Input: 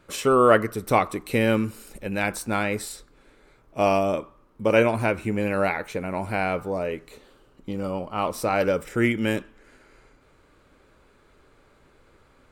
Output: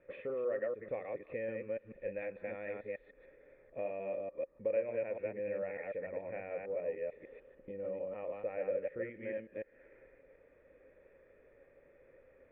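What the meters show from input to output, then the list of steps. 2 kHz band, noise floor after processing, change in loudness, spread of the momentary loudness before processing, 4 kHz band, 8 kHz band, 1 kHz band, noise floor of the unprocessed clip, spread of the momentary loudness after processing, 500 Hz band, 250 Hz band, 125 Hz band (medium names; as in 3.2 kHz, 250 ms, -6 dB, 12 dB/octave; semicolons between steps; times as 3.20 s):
-20.0 dB, -65 dBFS, -16.0 dB, 12 LU, under -35 dB, under -40 dB, -26.0 dB, -59 dBFS, 10 LU, -12.5 dB, -23.5 dB, -25.5 dB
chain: chunks repeated in reverse 148 ms, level -1.5 dB; compression 3:1, threshold -36 dBFS, peak gain reduction 19 dB; cascade formant filter e; trim +4.5 dB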